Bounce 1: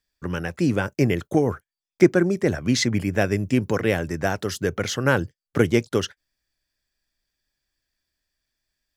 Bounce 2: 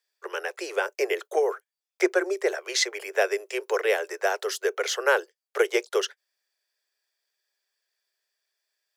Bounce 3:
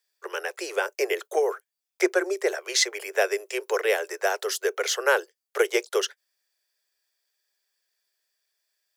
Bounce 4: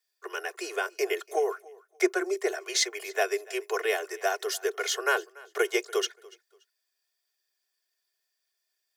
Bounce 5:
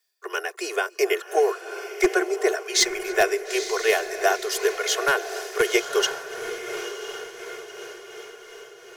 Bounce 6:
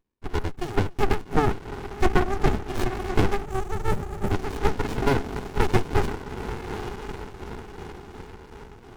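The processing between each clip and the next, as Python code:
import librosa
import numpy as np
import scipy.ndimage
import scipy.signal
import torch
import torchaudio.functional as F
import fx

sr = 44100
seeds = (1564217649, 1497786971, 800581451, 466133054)

y1 = scipy.signal.sosfilt(scipy.signal.butter(16, 380.0, 'highpass', fs=sr, output='sos'), x)
y2 = fx.high_shelf(y1, sr, hz=6200.0, db=6.5)
y3 = scipy.signal.sosfilt(scipy.signal.butter(2, 300.0, 'highpass', fs=sr, output='sos'), y2)
y3 = y3 + 0.81 * np.pad(y3, (int(2.8 * sr / 1000.0), 0))[:len(y3)]
y3 = fx.echo_feedback(y3, sr, ms=288, feedback_pct=25, wet_db=-23)
y3 = y3 * 10.0 ** (-5.0 / 20.0)
y4 = np.minimum(y3, 2.0 * 10.0 ** (-16.0 / 20.0) - y3)
y4 = fx.echo_diffused(y4, sr, ms=953, feedback_pct=51, wet_db=-9.0)
y4 = y4 * (1.0 - 0.4 / 2.0 + 0.4 / 2.0 * np.cos(2.0 * np.pi * 2.8 * (np.arange(len(y4)) / sr)))
y4 = y4 * 10.0 ** (7.0 / 20.0)
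y5 = fx.spec_erase(y4, sr, start_s=3.45, length_s=0.86, low_hz=610.0, high_hz=6600.0)
y5 = fx.high_shelf(y5, sr, hz=2000.0, db=-9.5)
y5 = fx.running_max(y5, sr, window=65)
y5 = y5 * 10.0 ** (6.5 / 20.0)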